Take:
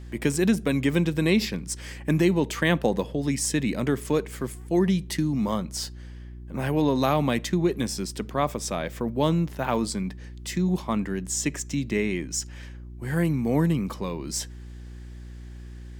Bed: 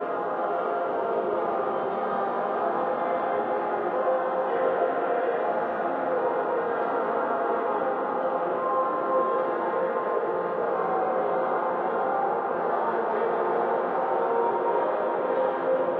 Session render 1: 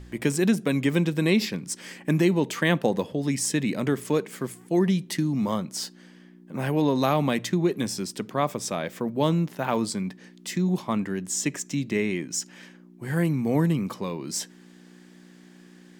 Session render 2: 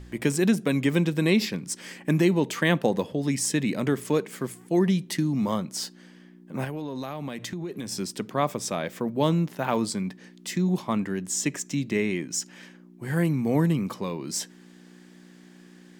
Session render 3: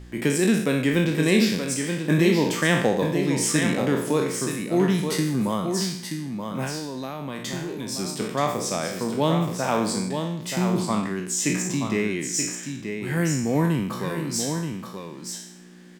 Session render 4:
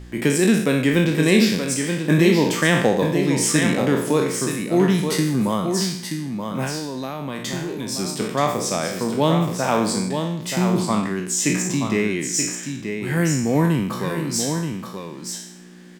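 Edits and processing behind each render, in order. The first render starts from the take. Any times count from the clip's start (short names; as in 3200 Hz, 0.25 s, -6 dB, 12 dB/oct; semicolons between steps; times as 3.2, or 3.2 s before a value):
de-hum 60 Hz, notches 2
6.64–7.92 compressor, threshold -30 dBFS
spectral trails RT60 0.68 s; on a send: echo 0.928 s -6.5 dB
gain +3.5 dB; limiter -3 dBFS, peak gain reduction 1.5 dB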